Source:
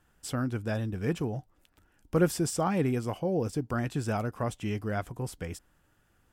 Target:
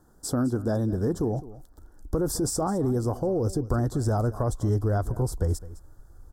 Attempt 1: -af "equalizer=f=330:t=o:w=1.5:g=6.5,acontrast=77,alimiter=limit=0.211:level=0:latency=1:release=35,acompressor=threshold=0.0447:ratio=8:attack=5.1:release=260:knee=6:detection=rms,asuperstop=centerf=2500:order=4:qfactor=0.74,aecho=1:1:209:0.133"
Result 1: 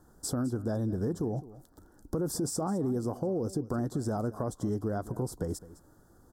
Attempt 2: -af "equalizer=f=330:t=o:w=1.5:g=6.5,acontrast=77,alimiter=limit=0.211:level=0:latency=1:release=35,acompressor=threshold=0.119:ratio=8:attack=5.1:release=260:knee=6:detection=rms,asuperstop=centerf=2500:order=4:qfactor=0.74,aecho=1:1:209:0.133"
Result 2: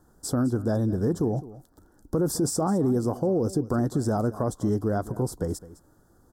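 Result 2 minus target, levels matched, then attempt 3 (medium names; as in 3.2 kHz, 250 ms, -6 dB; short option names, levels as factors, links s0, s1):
125 Hz band -2.5 dB
-af "equalizer=f=330:t=o:w=1.5:g=6.5,acontrast=77,alimiter=limit=0.211:level=0:latency=1:release=35,acompressor=threshold=0.119:ratio=8:attack=5.1:release=260:knee=6:detection=rms,asuperstop=centerf=2500:order=4:qfactor=0.74,asubboost=boost=10.5:cutoff=64,aecho=1:1:209:0.133"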